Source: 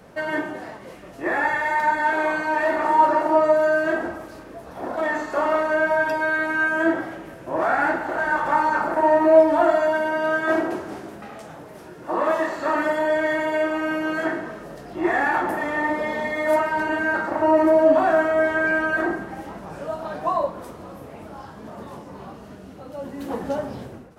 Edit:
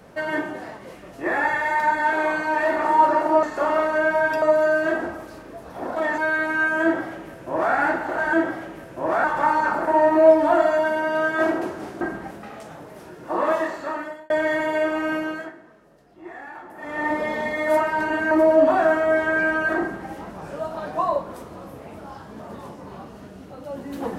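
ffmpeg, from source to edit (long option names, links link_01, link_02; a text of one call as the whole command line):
ffmpeg -i in.wav -filter_complex "[0:a]asplit=12[link_01][link_02][link_03][link_04][link_05][link_06][link_07][link_08][link_09][link_10][link_11][link_12];[link_01]atrim=end=3.432[link_13];[link_02]atrim=start=5.188:end=6.182[link_14];[link_03]atrim=start=3.428:end=5.192[link_15];[link_04]atrim=start=6.178:end=8.332[link_16];[link_05]atrim=start=6.828:end=7.742[link_17];[link_06]atrim=start=8.328:end=11.102[link_18];[link_07]atrim=start=19.078:end=19.382[link_19];[link_08]atrim=start=11.098:end=13.09,asetpts=PTS-STARTPTS,afade=type=out:start_time=1.212:duration=0.78[link_20];[link_09]atrim=start=13.09:end=14.31,asetpts=PTS-STARTPTS,afade=type=in:duration=0.004:curve=hsin,afade=type=out:start_time=0.86:duration=0.36:silence=0.133352[link_21];[link_10]atrim=start=14.31:end=15.54,asetpts=PTS-STARTPTS,volume=-17.5dB[link_22];[link_11]atrim=start=15.54:end=17.102,asetpts=PTS-STARTPTS,afade=type=in:duration=0.36:silence=0.133352[link_23];[link_12]atrim=start=17.588[link_24];[link_13][link_14]acrossfade=duration=0.004:curve1=hsin:curve2=hsin[link_25];[link_25][link_15]acrossfade=duration=0.004:curve1=hsin:curve2=hsin[link_26];[link_26][link_16]acrossfade=duration=0.004:curve1=hsin:curve2=hsin[link_27];[link_27][link_17]acrossfade=duration=0.004:curve1=hsin:curve2=hsin[link_28];[link_28][link_18]acrossfade=duration=0.004:curve1=hsin:curve2=hsin[link_29];[link_29][link_19]acrossfade=duration=0.004:curve1=hsin:curve2=hsin[link_30];[link_20][link_21][link_22][link_23]concat=n=4:v=0:a=1[link_31];[link_30][link_31]acrossfade=duration=0.004:curve1=hsin:curve2=hsin[link_32];[link_32][link_24]acrossfade=duration=0.004:curve1=hsin:curve2=hsin" out.wav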